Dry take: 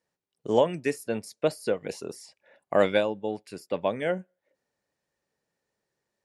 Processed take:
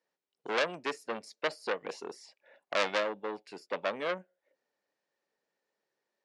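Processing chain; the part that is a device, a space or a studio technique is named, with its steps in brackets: public-address speaker with an overloaded transformer (core saturation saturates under 3800 Hz; BPF 300–5500 Hz); gain -1.5 dB

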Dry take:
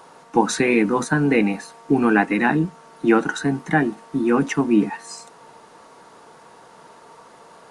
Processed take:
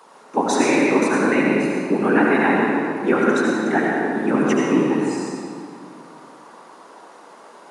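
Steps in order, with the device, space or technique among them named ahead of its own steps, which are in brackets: whispering ghost (whisperiser; HPF 200 Hz 24 dB/oct; reverb RT60 2.4 s, pre-delay 69 ms, DRR -3 dB); gain -2.5 dB

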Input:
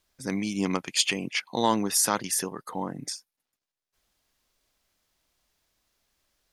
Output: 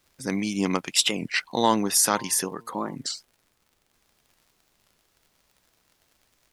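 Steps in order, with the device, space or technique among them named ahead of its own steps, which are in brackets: 1.81–2.98 de-hum 115.5 Hz, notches 9; warped LP (record warp 33 1/3 rpm, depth 250 cents; crackle 77/s -50 dBFS; pink noise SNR 42 dB); low shelf 120 Hz -4 dB; gain +3 dB

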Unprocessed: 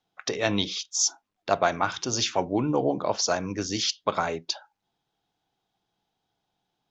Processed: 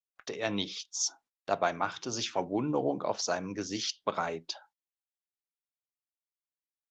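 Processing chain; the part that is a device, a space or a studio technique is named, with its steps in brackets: video call (HPF 120 Hz 12 dB/oct; AGC gain up to 3 dB; gate -45 dBFS, range -25 dB; gain -8 dB; Opus 32 kbps 48000 Hz)

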